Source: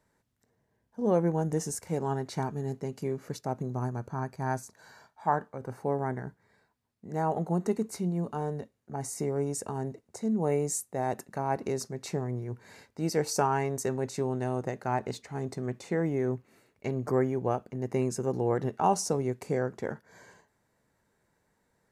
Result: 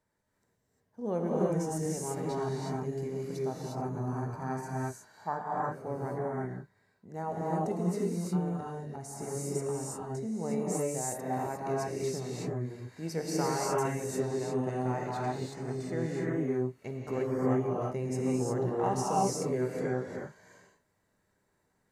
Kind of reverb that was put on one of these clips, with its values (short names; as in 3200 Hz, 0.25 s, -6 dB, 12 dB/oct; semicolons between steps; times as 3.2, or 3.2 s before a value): non-linear reverb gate 0.38 s rising, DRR -5 dB; gain -8 dB